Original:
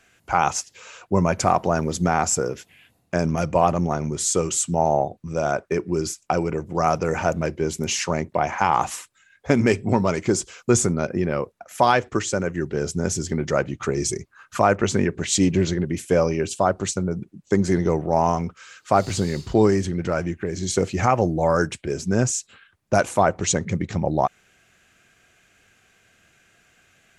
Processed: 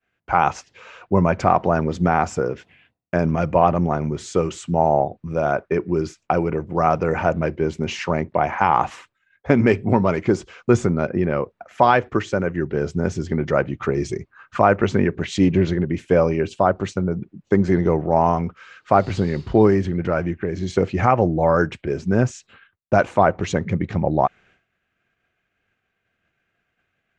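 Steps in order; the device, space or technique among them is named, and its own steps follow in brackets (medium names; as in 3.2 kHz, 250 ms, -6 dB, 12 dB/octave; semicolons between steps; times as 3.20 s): hearing-loss simulation (low-pass 2.7 kHz 12 dB/octave; expander -50 dBFS); trim +2.5 dB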